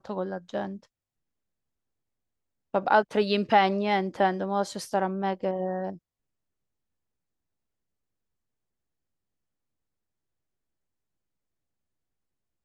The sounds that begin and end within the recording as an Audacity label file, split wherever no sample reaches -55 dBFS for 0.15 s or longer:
2.740000	5.980000	sound